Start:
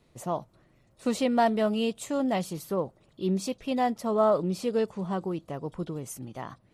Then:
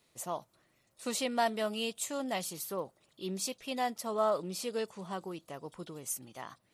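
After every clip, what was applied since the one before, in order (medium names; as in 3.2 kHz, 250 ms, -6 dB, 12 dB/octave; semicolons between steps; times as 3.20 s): tilt EQ +3 dB/octave; trim -5 dB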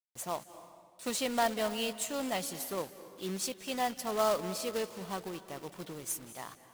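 companded quantiser 4-bit; reverberation RT60 1.7 s, pre-delay 181 ms, DRR 13 dB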